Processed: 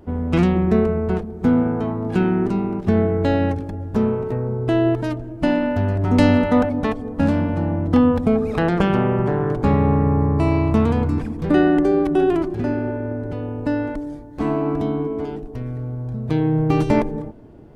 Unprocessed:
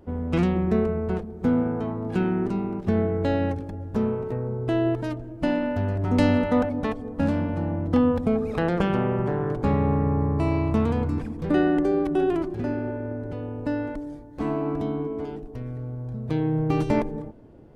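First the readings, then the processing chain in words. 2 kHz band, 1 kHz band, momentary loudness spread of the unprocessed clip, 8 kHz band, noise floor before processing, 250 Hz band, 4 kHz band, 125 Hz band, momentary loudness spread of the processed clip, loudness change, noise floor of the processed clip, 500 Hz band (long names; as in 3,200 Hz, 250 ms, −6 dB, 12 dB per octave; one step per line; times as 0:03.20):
+5.5 dB, +5.5 dB, 11 LU, can't be measured, −39 dBFS, +5.5 dB, +5.5 dB, +5.5 dB, 11 LU, +5.5 dB, −33 dBFS, +5.0 dB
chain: notch filter 520 Hz, Q 12
level +5.5 dB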